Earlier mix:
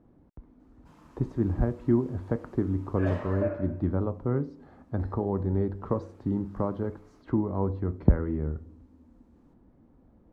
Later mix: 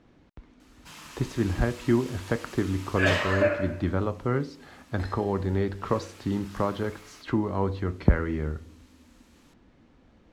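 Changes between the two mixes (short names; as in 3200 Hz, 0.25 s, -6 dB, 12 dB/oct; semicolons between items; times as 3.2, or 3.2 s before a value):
background +3.5 dB; master: remove EQ curve 280 Hz 0 dB, 410 Hz -2 dB, 920 Hz -4 dB, 2800 Hz -21 dB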